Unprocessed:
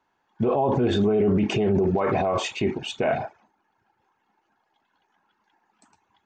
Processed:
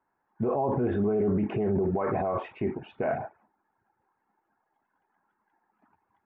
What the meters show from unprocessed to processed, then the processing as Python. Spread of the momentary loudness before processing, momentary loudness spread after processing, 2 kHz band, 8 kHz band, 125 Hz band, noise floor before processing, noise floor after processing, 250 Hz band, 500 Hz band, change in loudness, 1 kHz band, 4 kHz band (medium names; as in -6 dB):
7 LU, 7 LU, -8.5 dB, under -35 dB, -5.0 dB, -73 dBFS, -78 dBFS, -5.0 dB, -5.0 dB, -5.0 dB, -5.0 dB, under -20 dB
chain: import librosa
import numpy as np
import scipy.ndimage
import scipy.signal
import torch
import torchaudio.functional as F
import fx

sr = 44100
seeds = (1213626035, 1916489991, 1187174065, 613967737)

y = scipy.signal.sosfilt(scipy.signal.butter(4, 1900.0, 'lowpass', fs=sr, output='sos'), x)
y = y * 10.0 ** (-5.0 / 20.0)